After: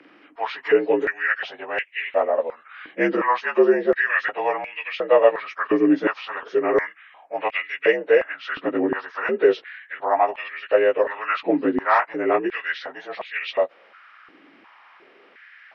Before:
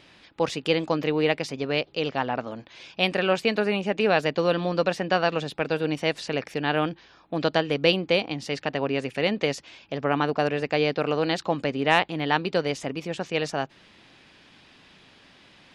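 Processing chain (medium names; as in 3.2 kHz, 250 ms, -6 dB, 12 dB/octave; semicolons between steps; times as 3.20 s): frequency axis rescaled in octaves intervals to 83%; step-sequenced high-pass 2.8 Hz 300–2300 Hz; trim +1.5 dB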